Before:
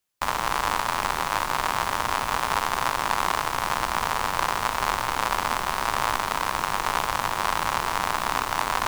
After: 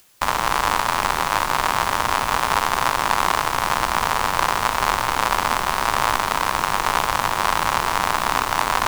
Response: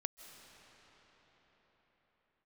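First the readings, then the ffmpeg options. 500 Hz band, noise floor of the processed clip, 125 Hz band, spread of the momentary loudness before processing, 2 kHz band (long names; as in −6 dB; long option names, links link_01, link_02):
+5.0 dB, −25 dBFS, +5.0 dB, 1 LU, +5.0 dB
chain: -af "acompressor=mode=upward:threshold=-43dB:ratio=2.5,volume=5dB"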